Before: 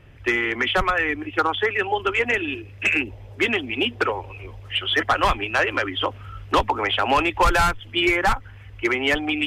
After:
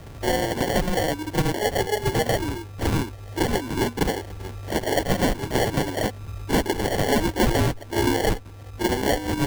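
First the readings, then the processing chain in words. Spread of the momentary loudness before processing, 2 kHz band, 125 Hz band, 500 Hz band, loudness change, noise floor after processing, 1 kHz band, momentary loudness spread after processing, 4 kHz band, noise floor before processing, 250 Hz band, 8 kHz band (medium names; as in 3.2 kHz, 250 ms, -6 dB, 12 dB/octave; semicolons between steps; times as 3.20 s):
8 LU, -8.5 dB, +7.5 dB, +1.0 dB, -2.5 dB, -40 dBFS, -5.0 dB, 7 LU, -5.5 dB, -42 dBFS, +3.0 dB, +8.0 dB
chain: reverse echo 38 ms -10 dB; sample-and-hold 35×; three bands compressed up and down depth 40%; trim -1.5 dB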